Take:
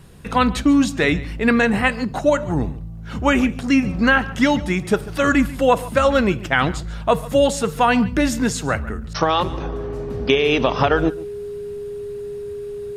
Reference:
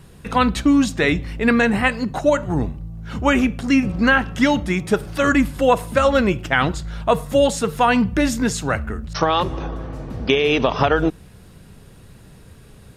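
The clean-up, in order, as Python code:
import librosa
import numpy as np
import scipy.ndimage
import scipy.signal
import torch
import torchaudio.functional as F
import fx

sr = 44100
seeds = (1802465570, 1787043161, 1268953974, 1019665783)

y = fx.notch(x, sr, hz=410.0, q=30.0)
y = fx.fix_echo_inverse(y, sr, delay_ms=142, level_db=-19.0)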